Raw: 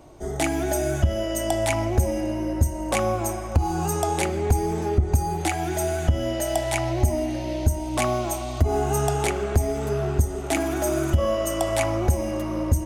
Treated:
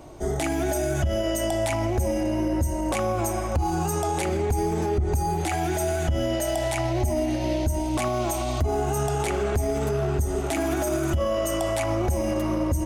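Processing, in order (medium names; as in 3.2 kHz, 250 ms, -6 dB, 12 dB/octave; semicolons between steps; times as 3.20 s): peak limiter -21 dBFS, peak gain reduction 10 dB; trim +4 dB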